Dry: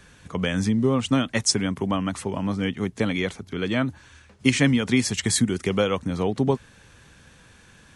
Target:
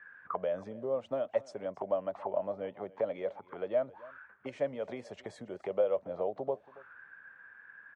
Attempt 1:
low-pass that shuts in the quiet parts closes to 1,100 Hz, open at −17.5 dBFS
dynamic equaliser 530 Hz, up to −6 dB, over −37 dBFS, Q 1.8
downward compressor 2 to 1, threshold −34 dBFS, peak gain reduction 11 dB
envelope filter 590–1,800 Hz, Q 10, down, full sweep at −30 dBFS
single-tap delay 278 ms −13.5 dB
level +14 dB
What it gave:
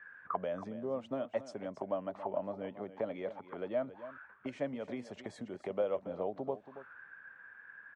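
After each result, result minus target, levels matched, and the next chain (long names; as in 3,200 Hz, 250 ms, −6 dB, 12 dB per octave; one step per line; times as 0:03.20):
250 Hz band +7.0 dB; echo-to-direct +7.5 dB
low-pass that shuts in the quiet parts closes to 1,100 Hz, open at −17.5 dBFS
dynamic equaliser 250 Hz, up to −6 dB, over −37 dBFS, Q 1.8
downward compressor 2 to 1, threshold −34 dBFS, peak gain reduction 10.5 dB
envelope filter 590–1,800 Hz, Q 10, down, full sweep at −30 dBFS
single-tap delay 278 ms −13.5 dB
level +14 dB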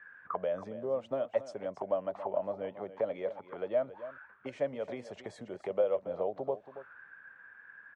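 echo-to-direct +7.5 dB
low-pass that shuts in the quiet parts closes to 1,100 Hz, open at −17.5 dBFS
dynamic equaliser 250 Hz, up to −6 dB, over −37 dBFS, Q 1.8
downward compressor 2 to 1, threshold −34 dBFS, peak gain reduction 10.5 dB
envelope filter 590–1,800 Hz, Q 10, down, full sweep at −30 dBFS
single-tap delay 278 ms −21 dB
level +14 dB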